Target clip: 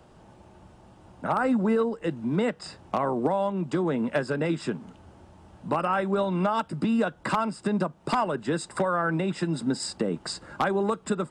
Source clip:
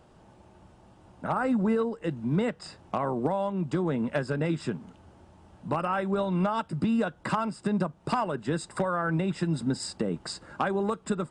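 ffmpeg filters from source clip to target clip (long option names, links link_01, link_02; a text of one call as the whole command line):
ffmpeg -i in.wav -filter_complex "[0:a]acrossover=split=170|730[link_01][link_02][link_03];[link_01]acompressor=threshold=-46dB:ratio=6[link_04];[link_04][link_02][link_03]amix=inputs=3:normalize=0,aeval=exprs='0.15*(abs(mod(val(0)/0.15+3,4)-2)-1)':channel_layout=same,volume=3dB" out.wav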